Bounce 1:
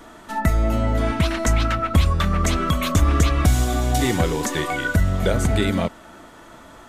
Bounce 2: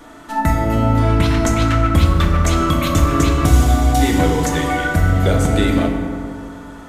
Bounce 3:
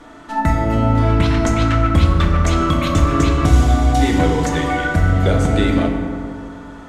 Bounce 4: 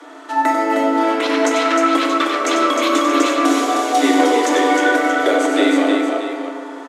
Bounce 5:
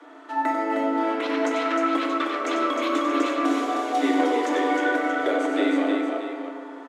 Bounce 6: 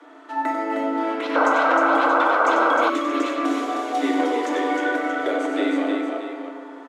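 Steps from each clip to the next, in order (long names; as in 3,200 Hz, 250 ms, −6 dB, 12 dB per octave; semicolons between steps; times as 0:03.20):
feedback delay network reverb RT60 2.6 s, high-frequency decay 0.4×, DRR 1 dB; level +1 dB
high-frequency loss of the air 54 metres
Butterworth high-pass 270 Hz 96 dB per octave; multi-tap delay 95/310/630 ms −6.5/−4.5/−11.5 dB; level +3 dB
bass and treble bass +3 dB, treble −9 dB; level −8 dB
sound drawn into the spectrogram noise, 0:01.35–0:02.90, 450–1,600 Hz −19 dBFS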